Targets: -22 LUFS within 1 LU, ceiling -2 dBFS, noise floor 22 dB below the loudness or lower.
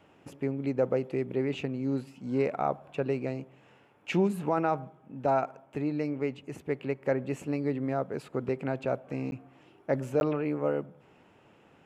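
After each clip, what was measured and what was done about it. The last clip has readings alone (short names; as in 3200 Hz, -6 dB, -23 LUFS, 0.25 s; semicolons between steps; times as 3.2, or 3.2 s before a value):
dropouts 2; longest dropout 11 ms; loudness -31.5 LUFS; peak -15.5 dBFS; loudness target -22.0 LUFS
-> interpolate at 9.31/10.2, 11 ms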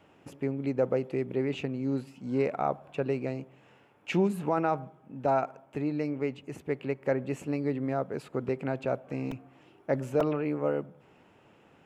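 dropouts 0; loudness -31.5 LUFS; peak -15.5 dBFS; loudness target -22.0 LUFS
-> gain +9.5 dB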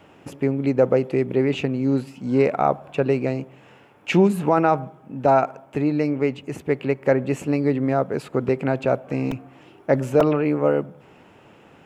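loudness -22.0 LUFS; peak -6.0 dBFS; noise floor -51 dBFS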